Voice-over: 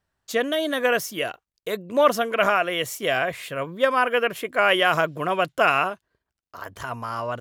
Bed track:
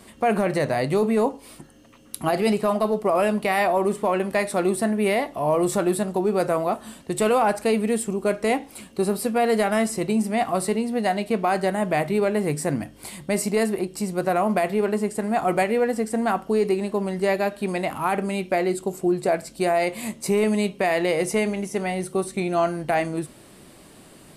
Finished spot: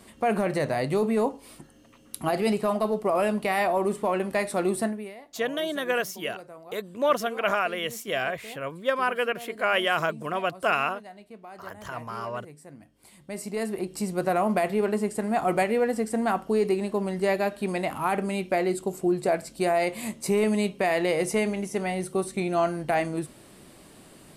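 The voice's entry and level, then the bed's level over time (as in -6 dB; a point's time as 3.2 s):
5.05 s, -5.0 dB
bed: 4.85 s -3.5 dB
5.14 s -22.5 dB
12.71 s -22.5 dB
13.95 s -2.5 dB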